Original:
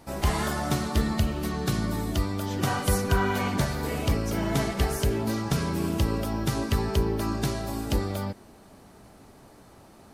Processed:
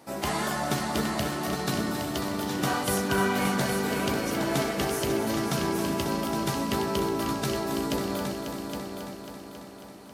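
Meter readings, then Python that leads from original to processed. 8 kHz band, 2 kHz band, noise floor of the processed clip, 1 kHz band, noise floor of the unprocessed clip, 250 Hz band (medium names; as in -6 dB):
+2.0 dB, +2.5 dB, -44 dBFS, +2.0 dB, -52 dBFS, 0.0 dB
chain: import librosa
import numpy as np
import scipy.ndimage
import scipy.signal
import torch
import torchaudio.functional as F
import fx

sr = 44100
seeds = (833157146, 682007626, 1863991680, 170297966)

p1 = scipy.signal.sosfilt(scipy.signal.butter(2, 190.0, 'highpass', fs=sr, output='sos'), x)
p2 = fx.doubler(p1, sr, ms=15.0, db=-11.0)
y = p2 + fx.echo_heads(p2, sr, ms=272, heads='all three', feedback_pct=52, wet_db=-10.0, dry=0)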